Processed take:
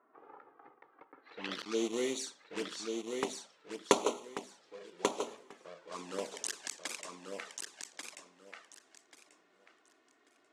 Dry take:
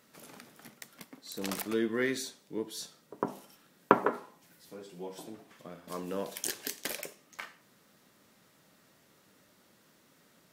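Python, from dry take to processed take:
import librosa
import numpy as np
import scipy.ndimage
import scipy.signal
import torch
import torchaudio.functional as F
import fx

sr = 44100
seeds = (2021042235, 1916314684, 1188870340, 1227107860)

y = fx.block_float(x, sr, bits=3)
y = scipy.signal.sosfilt(scipy.signal.butter(2, 310.0, 'highpass', fs=sr, output='sos'), y)
y = fx.env_lowpass(y, sr, base_hz=2300.0, full_db=-32.0)
y = fx.high_shelf(y, sr, hz=4300.0, db=-3.5)
y = fx.env_flanger(y, sr, rest_ms=2.9, full_db=-30.5)
y = fx.filter_sweep_lowpass(y, sr, from_hz=1100.0, to_hz=7900.0, start_s=1.06, end_s=1.86, q=2.0)
y = fx.echo_feedback(y, sr, ms=1138, feedback_pct=21, wet_db=-5.0)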